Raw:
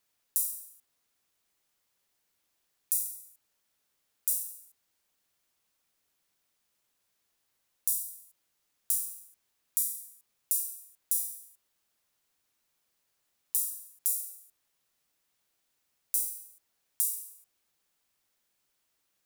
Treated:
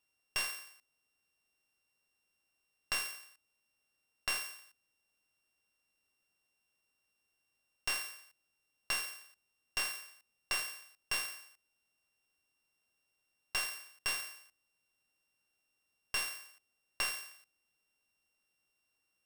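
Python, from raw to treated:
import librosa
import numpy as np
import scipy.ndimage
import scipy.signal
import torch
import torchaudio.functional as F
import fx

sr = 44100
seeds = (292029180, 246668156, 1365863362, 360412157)

y = np.r_[np.sort(x[:len(x) // 16 * 16].reshape(-1, 16), axis=1).ravel(), x[len(x) // 16 * 16:]]
y = fx.slew_limit(y, sr, full_power_hz=440.0)
y = y * librosa.db_to_amplitude(-4.0)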